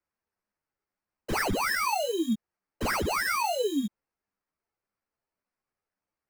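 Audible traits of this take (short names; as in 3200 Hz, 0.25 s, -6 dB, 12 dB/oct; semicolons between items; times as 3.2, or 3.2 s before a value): aliases and images of a low sample rate 3500 Hz, jitter 0%; a shimmering, thickened sound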